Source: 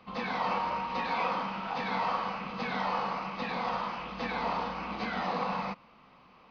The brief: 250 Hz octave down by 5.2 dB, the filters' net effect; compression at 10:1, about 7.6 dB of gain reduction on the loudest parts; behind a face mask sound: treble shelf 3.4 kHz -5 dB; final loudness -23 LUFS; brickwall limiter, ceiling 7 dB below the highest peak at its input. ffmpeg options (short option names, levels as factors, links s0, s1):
-af "equalizer=f=250:t=o:g=-7,acompressor=threshold=0.0178:ratio=10,alimiter=level_in=2.82:limit=0.0631:level=0:latency=1,volume=0.355,highshelf=f=3400:g=-5,volume=8.91"